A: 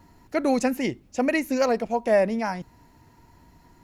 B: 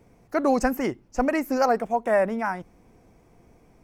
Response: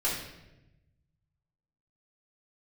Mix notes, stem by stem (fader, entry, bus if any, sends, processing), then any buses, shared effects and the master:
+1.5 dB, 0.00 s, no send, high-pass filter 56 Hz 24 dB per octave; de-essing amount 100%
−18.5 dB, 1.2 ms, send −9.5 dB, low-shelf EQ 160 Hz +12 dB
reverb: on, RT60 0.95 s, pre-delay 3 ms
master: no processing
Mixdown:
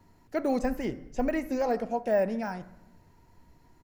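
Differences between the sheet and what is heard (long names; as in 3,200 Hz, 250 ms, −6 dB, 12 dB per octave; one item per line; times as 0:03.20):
stem A +1.5 dB → −7.5 dB
stem B: polarity flipped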